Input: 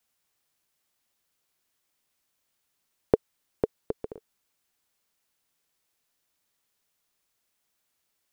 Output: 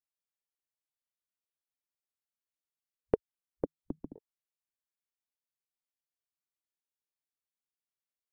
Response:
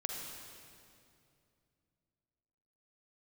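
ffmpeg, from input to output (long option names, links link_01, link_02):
-filter_complex "[0:a]asettb=1/sr,asplit=3[link_01][link_02][link_03];[link_01]atrim=end=3.644[link_04];[link_02]atrim=start=3.64:end=4.16,asetpts=PTS-STARTPTS,afade=type=in:duration=0.004:curve=qsin,afade=type=out:start_time=0.516:duration=0.004:curve=qsin,afreqshift=-160[link_05];[link_03]atrim=start=4.156[link_06];[link_04][link_05]acrossfade=duration=0.004:curve1=hsin:curve2=qsin[link_07];[link_07][link_06]acrossfade=duration=0.004:curve1=qsin:curve2=hsin,afwtdn=0.00447,volume=-6.5dB"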